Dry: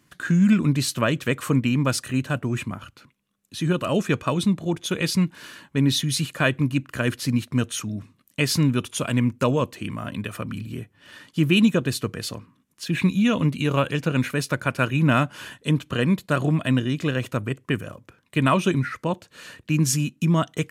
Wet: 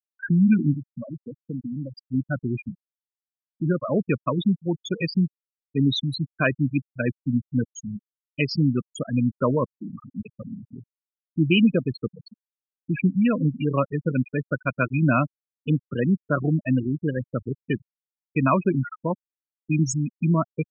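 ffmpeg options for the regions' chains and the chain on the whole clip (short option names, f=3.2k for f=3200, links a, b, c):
-filter_complex "[0:a]asettb=1/sr,asplit=3[a][b][c];[a]atrim=end=0.744[d];[b]atrim=start=0.74:end=1.98,asetpts=PTS-STARTPTS,afade=t=in:d=0.004:c=qsin,afade=t=out:st=1.236:d=0.004:c=qsin,highpass=f=93:w=0.5412,highpass=f=93:w=1.3066,acompressor=threshold=-25dB:ratio=8:attack=3.2:release=140:knee=1:detection=peak[e];[c]atrim=start=1.976[f];[d][e]acrossfade=d=0.004:c1=hsin:c2=qsin[g];[g][f]acrossfade=d=0.004:c1=qsin:c2=hsin,highpass=110,afftfilt=real='re*gte(hypot(re,im),0.178)':imag='im*gte(hypot(re,im),0.178)':win_size=1024:overlap=0.75"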